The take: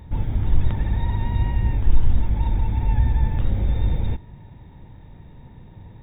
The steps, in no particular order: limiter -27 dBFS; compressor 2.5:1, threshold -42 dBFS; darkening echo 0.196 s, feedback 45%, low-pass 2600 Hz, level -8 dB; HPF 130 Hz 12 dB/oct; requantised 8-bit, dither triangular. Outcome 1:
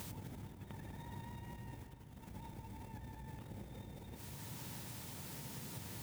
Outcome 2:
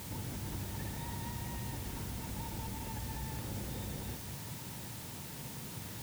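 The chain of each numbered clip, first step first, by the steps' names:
requantised > limiter > darkening echo > compressor > HPF; HPF > limiter > compressor > requantised > darkening echo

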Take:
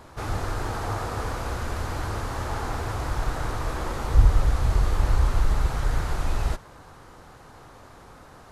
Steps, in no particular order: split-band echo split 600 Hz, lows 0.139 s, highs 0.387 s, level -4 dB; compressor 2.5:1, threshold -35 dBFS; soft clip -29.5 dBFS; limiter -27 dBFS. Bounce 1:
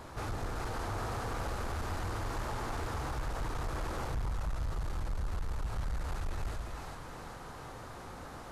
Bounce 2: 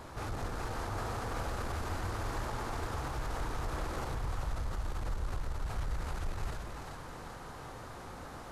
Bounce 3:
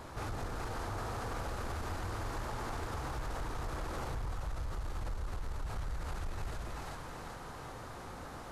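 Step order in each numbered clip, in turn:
compressor > split-band echo > soft clip > limiter; limiter > soft clip > compressor > split-band echo; limiter > split-band echo > compressor > soft clip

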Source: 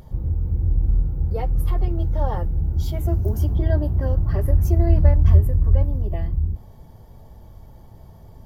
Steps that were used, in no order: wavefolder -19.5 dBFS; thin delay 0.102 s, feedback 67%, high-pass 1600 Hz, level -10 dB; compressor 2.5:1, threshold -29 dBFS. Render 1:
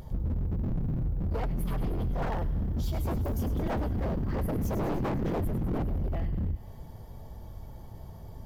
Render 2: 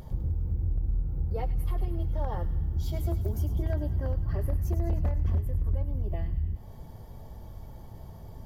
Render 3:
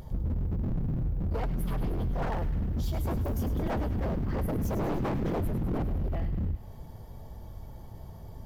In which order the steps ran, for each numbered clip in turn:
thin delay > wavefolder > compressor; compressor > thin delay > wavefolder; wavefolder > compressor > thin delay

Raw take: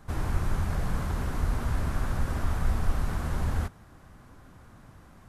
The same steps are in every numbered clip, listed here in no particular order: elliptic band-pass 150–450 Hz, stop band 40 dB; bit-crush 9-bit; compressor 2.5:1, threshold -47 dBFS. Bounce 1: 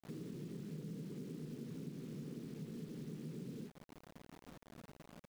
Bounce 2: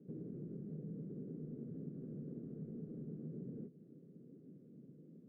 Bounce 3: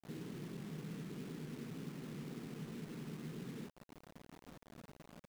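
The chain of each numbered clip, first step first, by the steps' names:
elliptic band-pass > bit-crush > compressor; bit-crush > elliptic band-pass > compressor; elliptic band-pass > compressor > bit-crush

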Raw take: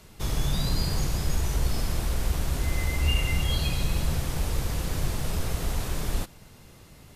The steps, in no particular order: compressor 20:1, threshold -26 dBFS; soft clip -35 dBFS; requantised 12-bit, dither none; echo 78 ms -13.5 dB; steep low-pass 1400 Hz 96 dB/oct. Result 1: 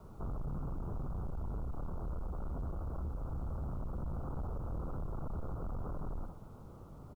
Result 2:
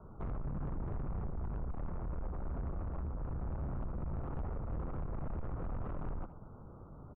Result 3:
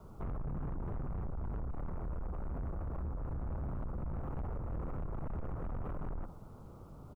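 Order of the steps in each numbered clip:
echo > compressor > soft clip > steep low-pass > requantised; requantised > steep low-pass > compressor > soft clip > echo; steep low-pass > requantised > compressor > echo > soft clip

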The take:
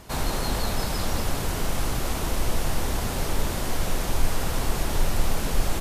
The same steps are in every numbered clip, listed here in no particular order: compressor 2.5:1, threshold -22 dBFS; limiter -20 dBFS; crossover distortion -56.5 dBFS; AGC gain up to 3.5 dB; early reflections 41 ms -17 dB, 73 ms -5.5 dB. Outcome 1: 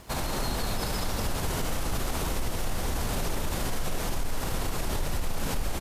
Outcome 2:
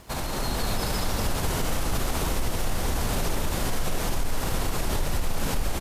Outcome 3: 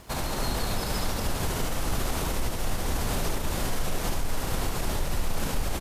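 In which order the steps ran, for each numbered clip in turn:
AGC > compressor > early reflections > crossover distortion > limiter; compressor > early reflections > crossover distortion > limiter > AGC; compressor > AGC > crossover distortion > limiter > early reflections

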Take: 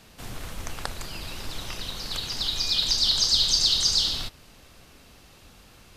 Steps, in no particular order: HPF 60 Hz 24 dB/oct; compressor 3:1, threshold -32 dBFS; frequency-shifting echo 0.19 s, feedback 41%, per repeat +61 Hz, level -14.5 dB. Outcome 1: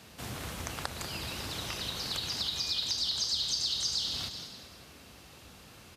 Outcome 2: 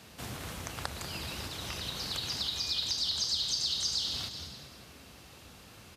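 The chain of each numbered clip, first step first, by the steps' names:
HPF > frequency-shifting echo > compressor; frequency-shifting echo > compressor > HPF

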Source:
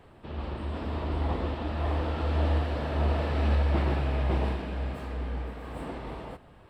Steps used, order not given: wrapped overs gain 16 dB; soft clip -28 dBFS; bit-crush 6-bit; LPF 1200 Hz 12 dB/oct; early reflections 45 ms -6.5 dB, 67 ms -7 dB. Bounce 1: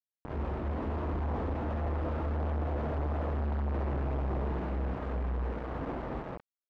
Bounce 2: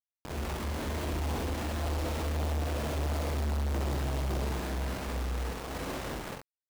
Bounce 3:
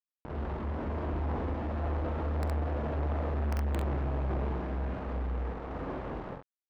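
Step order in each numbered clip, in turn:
wrapped overs > early reflections > soft clip > bit-crush > LPF; wrapped overs > LPF > bit-crush > early reflections > soft clip; bit-crush > LPF > wrapped overs > early reflections > soft clip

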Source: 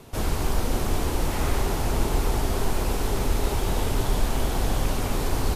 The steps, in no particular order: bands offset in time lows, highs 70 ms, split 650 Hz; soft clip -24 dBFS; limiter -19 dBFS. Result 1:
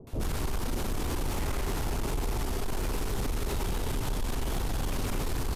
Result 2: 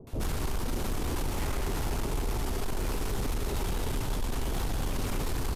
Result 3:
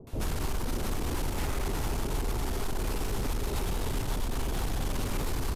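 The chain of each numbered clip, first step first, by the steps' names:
bands offset in time > limiter > soft clip; limiter > bands offset in time > soft clip; limiter > soft clip > bands offset in time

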